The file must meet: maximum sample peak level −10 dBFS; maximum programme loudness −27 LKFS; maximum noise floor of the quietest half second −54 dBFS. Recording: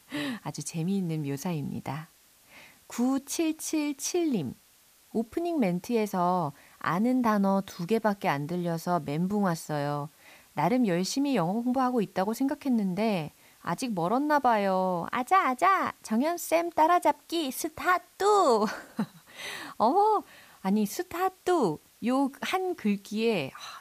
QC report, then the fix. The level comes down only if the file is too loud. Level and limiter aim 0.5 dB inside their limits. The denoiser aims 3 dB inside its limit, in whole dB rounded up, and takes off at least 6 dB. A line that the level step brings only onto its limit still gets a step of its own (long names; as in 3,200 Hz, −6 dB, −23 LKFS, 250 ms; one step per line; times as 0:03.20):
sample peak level −12.5 dBFS: in spec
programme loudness −28.0 LKFS: in spec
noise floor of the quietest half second −60 dBFS: in spec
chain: no processing needed